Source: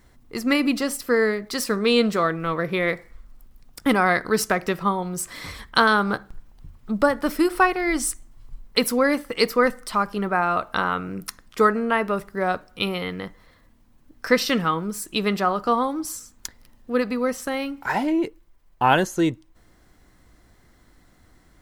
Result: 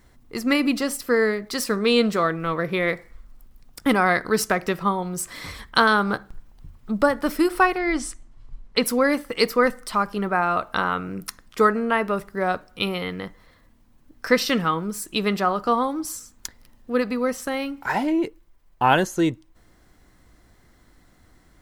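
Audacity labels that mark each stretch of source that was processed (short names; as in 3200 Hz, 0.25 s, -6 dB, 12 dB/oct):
7.780000	8.860000	air absorption 68 m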